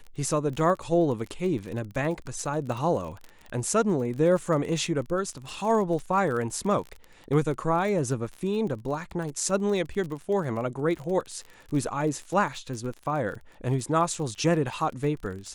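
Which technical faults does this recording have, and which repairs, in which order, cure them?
crackle 32 per s -33 dBFS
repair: de-click

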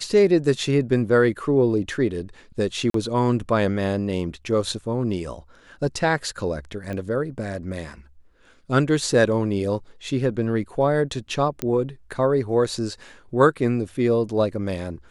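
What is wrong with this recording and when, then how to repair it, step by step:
2.90–2.94 s: dropout 43 ms
6.93 s: pop -20 dBFS
11.62 s: pop -10 dBFS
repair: de-click; interpolate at 2.90 s, 43 ms

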